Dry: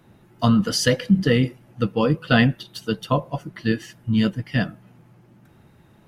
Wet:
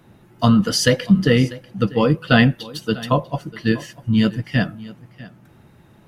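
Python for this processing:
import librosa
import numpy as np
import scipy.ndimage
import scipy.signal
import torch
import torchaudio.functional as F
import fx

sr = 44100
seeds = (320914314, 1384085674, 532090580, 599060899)

y = x + 10.0 ** (-19.5 / 20.0) * np.pad(x, (int(644 * sr / 1000.0), 0))[:len(x)]
y = y * librosa.db_to_amplitude(3.0)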